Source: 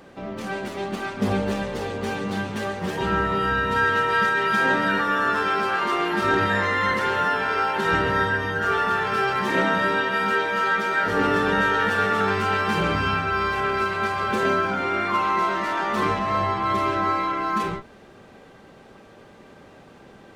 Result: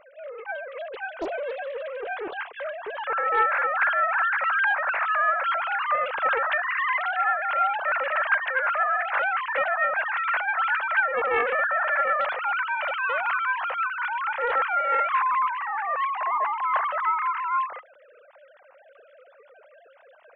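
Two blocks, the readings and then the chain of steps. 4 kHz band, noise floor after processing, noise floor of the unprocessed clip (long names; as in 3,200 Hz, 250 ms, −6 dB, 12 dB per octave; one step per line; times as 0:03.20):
−10.0 dB, −54 dBFS, −48 dBFS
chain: three sine waves on the formant tracks
sound drawn into the spectrogram rise, 0:13.09–0:13.40, 460–1,500 Hz −29 dBFS
highs frequency-modulated by the lows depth 0.78 ms
level −2.5 dB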